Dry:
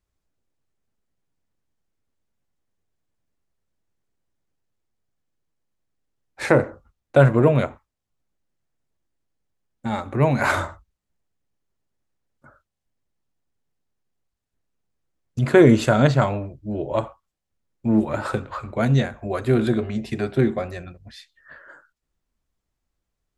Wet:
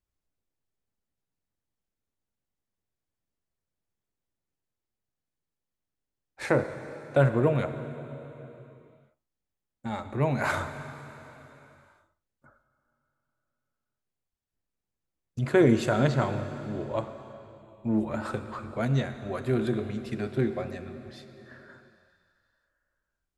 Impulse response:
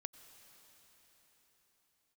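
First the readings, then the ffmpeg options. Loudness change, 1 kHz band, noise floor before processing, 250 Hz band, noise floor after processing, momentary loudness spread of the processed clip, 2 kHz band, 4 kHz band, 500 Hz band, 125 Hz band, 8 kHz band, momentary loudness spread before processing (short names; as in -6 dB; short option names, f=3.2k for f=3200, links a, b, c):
-7.5 dB, -7.0 dB, -81 dBFS, -7.0 dB, under -85 dBFS, 21 LU, -7.0 dB, -7.0 dB, -7.0 dB, -7.5 dB, -7.0 dB, 15 LU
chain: -filter_complex "[1:a]atrim=start_sample=2205,asetrate=61740,aresample=44100[a];[0:a][a]afir=irnorm=-1:irlink=0"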